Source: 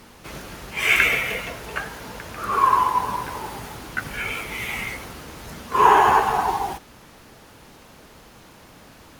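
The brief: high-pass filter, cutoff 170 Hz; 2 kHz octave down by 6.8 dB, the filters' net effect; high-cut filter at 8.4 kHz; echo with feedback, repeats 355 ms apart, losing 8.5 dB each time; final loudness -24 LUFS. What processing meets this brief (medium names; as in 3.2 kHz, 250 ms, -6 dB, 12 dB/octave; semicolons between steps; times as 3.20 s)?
high-pass 170 Hz; low-pass 8.4 kHz; peaking EQ 2 kHz -8.5 dB; feedback delay 355 ms, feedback 38%, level -8.5 dB; trim -0.5 dB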